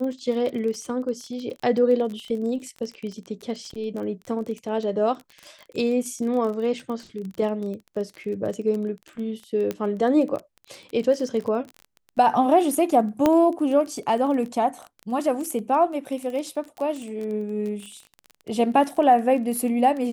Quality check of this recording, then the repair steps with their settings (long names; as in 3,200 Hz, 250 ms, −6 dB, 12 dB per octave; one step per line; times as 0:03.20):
surface crackle 23 per second −30 dBFS
0:09.71: click −14 dBFS
0:13.26: click −7 dBFS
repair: click removal